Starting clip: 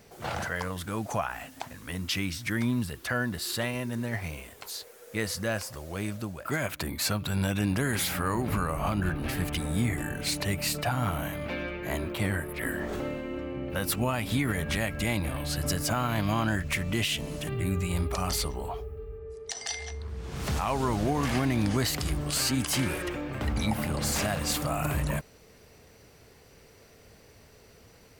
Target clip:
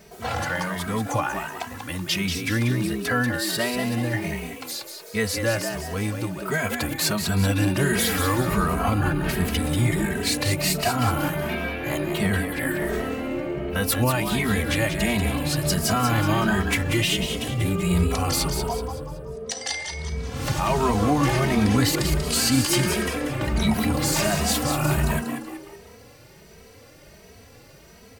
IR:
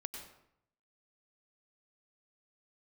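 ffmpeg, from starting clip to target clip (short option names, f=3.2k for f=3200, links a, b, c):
-filter_complex "[0:a]asplit=6[a][b][c][d][e][f];[b]adelay=188,afreqshift=84,volume=-7dB[g];[c]adelay=376,afreqshift=168,volume=-14.5dB[h];[d]adelay=564,afreqshift=252,volume=-22.1dB[i];[e]adelay=752,afreqshift=336,volume=-29.6dB[j];[f]adelay=940,afreqshift=420,volume=-37.1dB[k];[a][g][h][i][j][k]amix=inputs=6:normalize=0,asplit=2[l][m];[m]adelay=2.8,afreqshift=1.4[n];[l][n]amix=inputs=2:normalize=1,volume=8.5dB"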